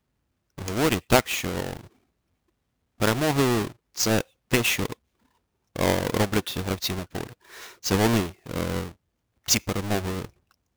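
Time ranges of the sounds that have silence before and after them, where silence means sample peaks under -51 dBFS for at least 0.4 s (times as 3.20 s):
0.58–1.87 s
3.00–4.94 s
5.76–8.92 s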